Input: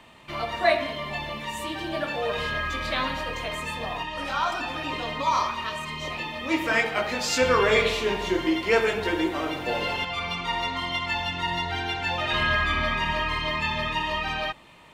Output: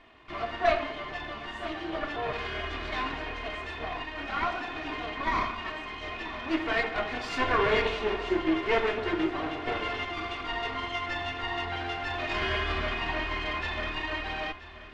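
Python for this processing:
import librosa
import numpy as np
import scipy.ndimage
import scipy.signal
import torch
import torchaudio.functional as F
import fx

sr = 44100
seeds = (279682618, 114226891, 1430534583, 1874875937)

p1 = fx.lower_of_two(x, sr, delay_ms=2.8)
p2 = scipy.signal.sosfilt(scipy.signal.butter(2, 2800.0, 'lowpass', fs=sr, output='sos'), p1)
p3 = p2 + fx.echo_feedback(p2, sr, ms=979, feedback_pct=46, wet_db=-15.5, dry=0)
y = p3 * librosa.db_to_amplitude(-2.0)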